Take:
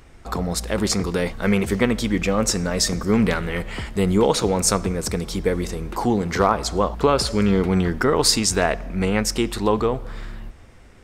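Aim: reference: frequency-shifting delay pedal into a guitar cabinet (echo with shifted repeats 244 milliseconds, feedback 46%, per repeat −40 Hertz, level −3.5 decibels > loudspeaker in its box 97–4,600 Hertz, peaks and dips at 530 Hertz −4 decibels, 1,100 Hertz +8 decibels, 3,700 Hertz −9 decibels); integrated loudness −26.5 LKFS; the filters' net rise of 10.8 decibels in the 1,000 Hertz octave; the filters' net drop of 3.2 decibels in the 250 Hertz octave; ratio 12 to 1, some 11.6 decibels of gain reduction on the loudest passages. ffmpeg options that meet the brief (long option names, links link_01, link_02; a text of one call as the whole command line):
ffmpeg -i in.wav -filter_complex "[0:a]equalizer=frequency=250:width_type=o:gain=-4.5,equalizer=frequency=1000:width_type=o:gain=8,acompressor=threshold=-20dB:ratio=12,asplit=7[link_01][link_02][link_03][link_04][link_05][link_06][link_07];[link_02]adelay=244,afreqshift=-40,volume=-3.5dB[link_08];[link_03]adelay=488,afreqshift=-80,volume=-10.2dB[link_09];[link_04]adelay=732,afreqshift=-120,volume=-17dB[link_10];[link_05]adelay=976,afreqshift=-160,volume=-23.7dB[link_11];[link_06]adelay=1220,afreqshift=-200,volume=-30.5dB[link_12];[link_07]adelay=1464,afreqshift=-240,volume=-37.2dB[link_13];[link_01][link_08][link_09][link_10][link_11][link_12][link_13]amix=inputs=7:normalize=0,highpass=97,equalizer=frequency=530:width_type=q:width=4:gain=-4,equalizer=frequency=1100:width_type=q:width=4:gain=8,equalizer=frequency=3700:width_type=q:width=4:gain=-9,lowpass=frequency=4600:width=0.5412,lowpass=frequency=4600:width=1.3066,volume=-2.5dB" out.wav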